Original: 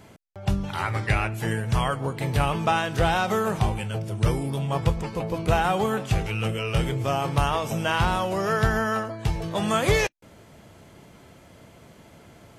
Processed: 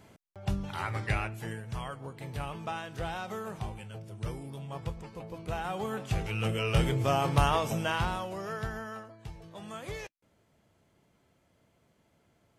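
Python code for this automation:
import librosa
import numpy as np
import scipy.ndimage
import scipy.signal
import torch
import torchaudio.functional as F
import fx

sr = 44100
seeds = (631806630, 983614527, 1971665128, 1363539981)

y = fx.gain(x, sr, db=fx.line((1.16, -7.0), (1.65, -14.0), (5.5, -14.0), (6.64, -2.0), (7.59, -2.0), (8.3, -11.5), (9.36, -19.0)))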